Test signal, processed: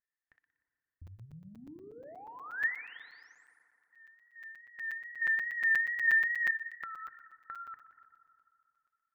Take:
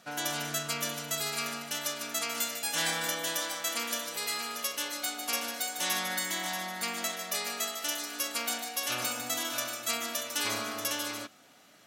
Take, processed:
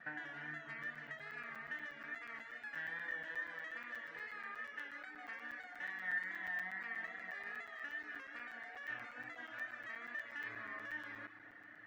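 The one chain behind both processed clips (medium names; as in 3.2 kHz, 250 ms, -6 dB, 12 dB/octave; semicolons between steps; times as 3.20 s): bass shelf 140 Hz +7.5 dB; thinning echo 61 ms, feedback 57%, high-pass 650 Hz, level -11 dB; compression 6:1, threshold -43 dBFS; vibrato 2.4 Hz 55 cents; saturation -31.5 dBFS; resonant low-pass 1.8 kHz, resonance Q 16; FDN reverb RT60 2.7 s, high-frequency decay 0.4×, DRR 7 dB; reverb removal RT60 0.5 s; crackling interface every 0.12 s, samples 256, zero, from 0.83 s; trim -7 dB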